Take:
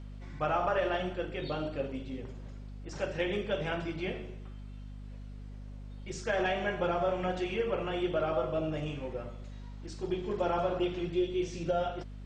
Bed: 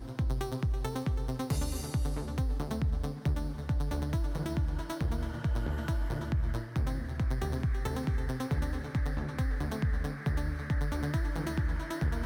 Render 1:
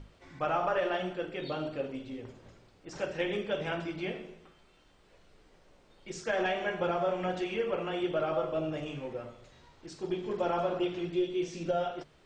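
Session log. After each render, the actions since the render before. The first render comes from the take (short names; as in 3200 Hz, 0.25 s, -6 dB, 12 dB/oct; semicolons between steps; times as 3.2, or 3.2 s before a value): notches 50/100/150/200/250 Hz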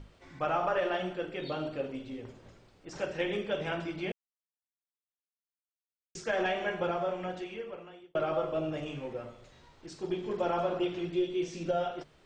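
4.12–6.15 mute; 6.72–8.15 fade out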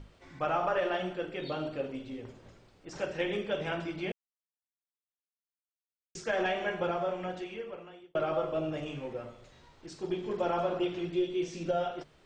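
nothing audible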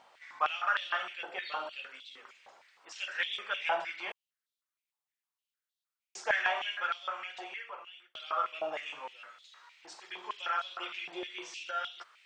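stepped high-pass 6.5 Hz 810–3600 Hz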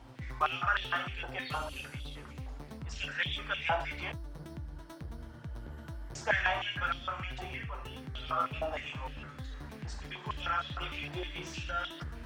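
add bed -12 dB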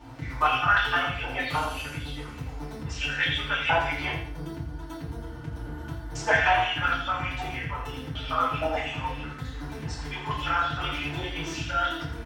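feedback echo 83 ms, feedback 32%, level -9.5 dB; FDN reverb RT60 0.41 s, low-frequency decay 0.85×, high-frequency decay 0.75×, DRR -7.5 dB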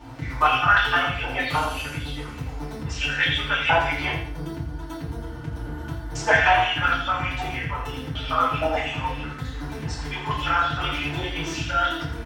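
gain +4 dB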